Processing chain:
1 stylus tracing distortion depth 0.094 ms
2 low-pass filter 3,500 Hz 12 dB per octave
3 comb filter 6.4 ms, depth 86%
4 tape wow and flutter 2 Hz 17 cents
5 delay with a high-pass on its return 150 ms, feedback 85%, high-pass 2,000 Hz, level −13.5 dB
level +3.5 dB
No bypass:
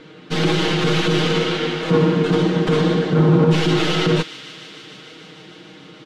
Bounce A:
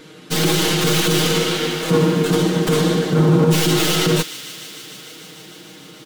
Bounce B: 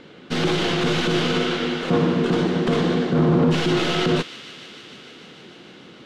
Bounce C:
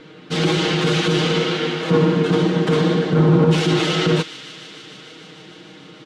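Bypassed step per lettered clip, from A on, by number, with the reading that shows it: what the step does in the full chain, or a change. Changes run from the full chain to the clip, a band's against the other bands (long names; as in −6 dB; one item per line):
2, 8 kHz band +13.0 dB
3, 125 Hz band −3.0 dB
1, 8 kHz band +1.5 dB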